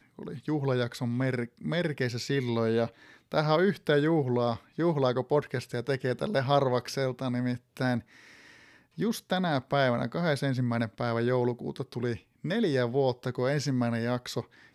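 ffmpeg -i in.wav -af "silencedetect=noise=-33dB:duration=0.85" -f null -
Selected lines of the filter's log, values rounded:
silence_start: 7.99
silence_end: 8.98 | silence_duration: 0.99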